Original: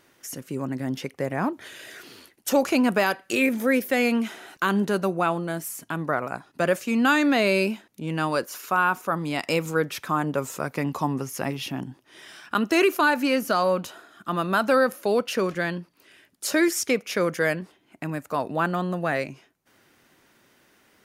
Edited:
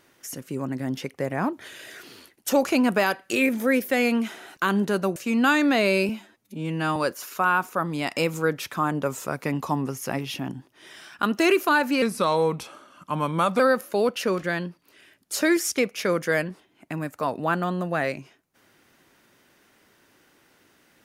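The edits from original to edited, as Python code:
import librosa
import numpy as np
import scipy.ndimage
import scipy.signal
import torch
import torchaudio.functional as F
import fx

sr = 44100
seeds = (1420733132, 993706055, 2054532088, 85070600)

y = fx.edit(x, sr, fx.cut(start_s=5.16, length_s=1.61),
    fx.stretch_span(start_s=7.7, length_s=0.58, factor=1.5),
    fx.speed_span(start_s=13.34, length_s=1.37, speed=0.87), tone=tone)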